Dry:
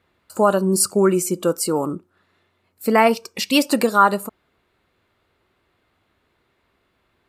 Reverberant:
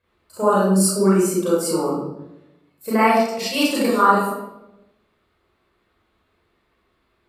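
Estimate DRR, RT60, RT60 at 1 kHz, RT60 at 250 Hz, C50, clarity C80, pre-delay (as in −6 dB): −8.5 dB, 0.95 s, 0.80 s, 1.1 s, −1.0 dB, 3.5 dB, 31 ms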